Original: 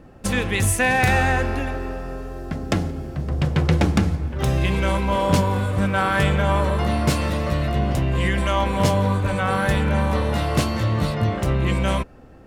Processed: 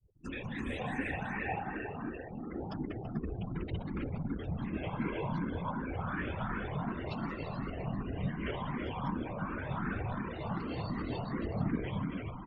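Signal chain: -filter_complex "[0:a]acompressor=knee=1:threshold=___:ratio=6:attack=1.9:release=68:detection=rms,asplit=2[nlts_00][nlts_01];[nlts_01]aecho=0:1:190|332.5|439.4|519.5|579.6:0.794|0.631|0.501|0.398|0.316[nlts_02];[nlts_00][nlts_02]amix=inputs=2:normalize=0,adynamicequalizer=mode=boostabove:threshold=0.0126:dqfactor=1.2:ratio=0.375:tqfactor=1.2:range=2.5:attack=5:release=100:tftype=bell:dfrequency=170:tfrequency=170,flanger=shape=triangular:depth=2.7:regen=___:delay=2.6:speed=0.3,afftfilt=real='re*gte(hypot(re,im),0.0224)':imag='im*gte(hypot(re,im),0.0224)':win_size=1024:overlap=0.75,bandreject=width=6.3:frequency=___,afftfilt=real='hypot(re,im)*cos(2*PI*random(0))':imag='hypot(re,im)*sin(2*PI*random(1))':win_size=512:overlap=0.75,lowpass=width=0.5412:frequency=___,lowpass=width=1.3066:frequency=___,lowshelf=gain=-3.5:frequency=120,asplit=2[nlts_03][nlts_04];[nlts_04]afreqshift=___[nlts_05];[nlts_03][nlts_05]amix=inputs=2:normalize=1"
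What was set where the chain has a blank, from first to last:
-22dB, 48, 560, 5.1k, 5.1k, 2.7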